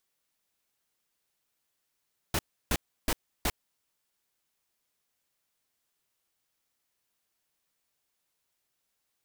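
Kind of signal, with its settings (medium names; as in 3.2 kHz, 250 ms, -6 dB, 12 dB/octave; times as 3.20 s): noise bursts pink, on 0.05 s, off 0.32 s, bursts 4, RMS -27 dBFS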